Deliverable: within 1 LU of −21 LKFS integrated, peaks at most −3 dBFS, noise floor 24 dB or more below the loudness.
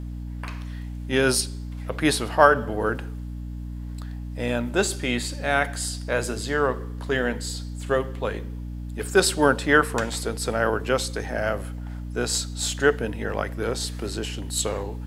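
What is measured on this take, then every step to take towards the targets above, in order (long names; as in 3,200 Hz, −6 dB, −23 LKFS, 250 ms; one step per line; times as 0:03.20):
mains hum 60 Hz; hum harmonics up to 300 Hz; level of the hum −31 dBFS; integrated loudness −24.5 LKFS; sample peak −2.0 dBFS; target loudness −21.0 LKFS
→ mains-hum notches 60/120/180/240/300 Hz
level +3.5 dB
brickwall limiter −3 dBFS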